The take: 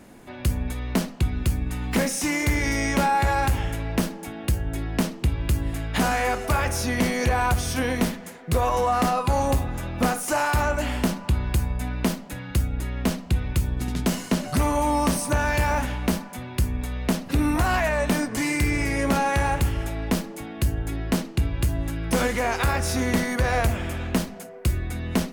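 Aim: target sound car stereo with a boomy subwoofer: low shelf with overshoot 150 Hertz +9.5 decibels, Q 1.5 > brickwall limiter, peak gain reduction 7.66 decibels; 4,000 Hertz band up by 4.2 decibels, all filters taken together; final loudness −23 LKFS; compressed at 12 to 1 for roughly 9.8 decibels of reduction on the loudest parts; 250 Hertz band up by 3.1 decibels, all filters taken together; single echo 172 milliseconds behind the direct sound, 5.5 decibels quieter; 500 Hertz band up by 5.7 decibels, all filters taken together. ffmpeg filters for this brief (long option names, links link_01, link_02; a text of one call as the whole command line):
ffmpeg -i in.wav -af "equalizer=frequency=250:width_type=o:gain=4,equalizer=frequency=500:width_type=o:gain=6.5,equalizer=frequency=4000:width_type=o:gain=5.5,acompressor=threshold=-23dB:ratio=12,lowshelf=frequency=150:width_type=q:width=1.5:gain=9.5,aecho=1:1:172:0.531,volume=2.5dB,alimiter=limit=-13dB:level=0:latency=1" out.wav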